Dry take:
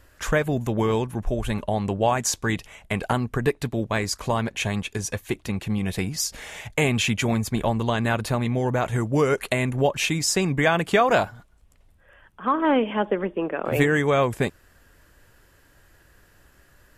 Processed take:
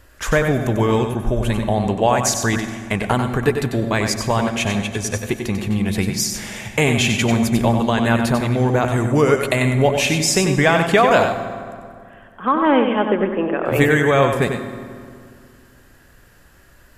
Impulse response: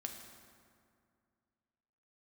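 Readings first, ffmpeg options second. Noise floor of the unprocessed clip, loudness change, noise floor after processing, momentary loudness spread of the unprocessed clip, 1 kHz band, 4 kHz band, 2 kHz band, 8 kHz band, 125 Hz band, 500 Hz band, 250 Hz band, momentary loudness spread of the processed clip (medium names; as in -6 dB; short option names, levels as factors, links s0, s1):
-57 dBFS, +6.0 dB, -49 dBFS, 8 LU, +5.5 dB, +5.5 dB, +5.5 dB, +5.5 dB, +6.0 dB, +6.0 dB, +6.5 dB, 9 LU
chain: -filter_complex "[0:a]asplit=2[s0][s1];[1:a]atrim=start_sample=2205,adelay=94[s2];[s1][s2]afir=irnorm=-1:irlink=0,volume=0.708[s3];[s0][s3]amix=inputs=2:normalize=0,volume=1.68"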